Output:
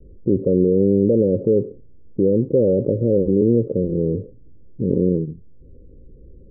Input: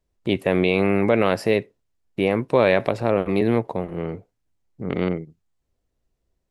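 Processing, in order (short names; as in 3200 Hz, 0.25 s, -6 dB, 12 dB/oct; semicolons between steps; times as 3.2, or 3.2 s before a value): steep low-pass 540 Hz 96 dB/oct; fast leveller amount 50%; gain +2.5 dB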